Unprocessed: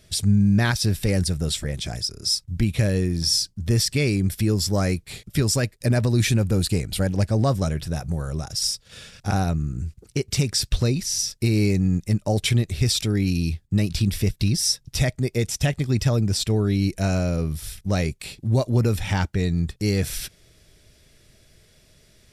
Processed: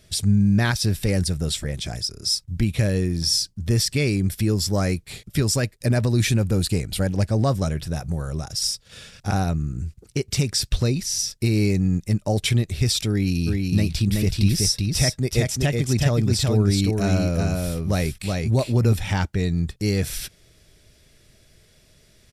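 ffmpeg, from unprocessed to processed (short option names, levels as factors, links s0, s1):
-filter_complex "[0:a]asplit=3[s0][s1][s2];[s0]afade=t=out:st=13.46:d=0.02[s3];[s1]aecho=1:1:375:0.708,afade=t=in:st=13.46:d=0.02,afade=t=out:st=18.92:d=0.02[s4];[s2]afade=t=in:st=18.92:d=0.02[s5];[s3][s4][s5]amix=inputs=3:normalize=0"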